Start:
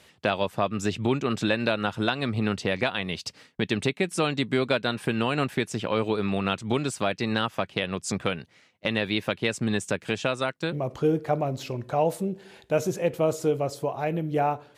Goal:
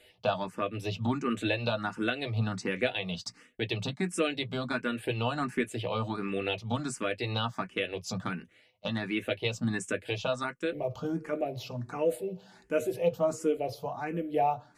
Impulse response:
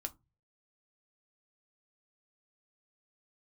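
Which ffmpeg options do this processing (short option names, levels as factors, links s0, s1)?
-filter_complex "[1:a]atrim=start_sample=2205,atrim=end_sample=3087,asetrate=88200,aresample=44100[s0];[0:a][s0]afir=irnorm=-1:irlink=0,asplit=2[s1][s2];[s2]afreqshift=1.4[s3];[s1][s3]amix=inputs=2:normalize=1,volume=1.88"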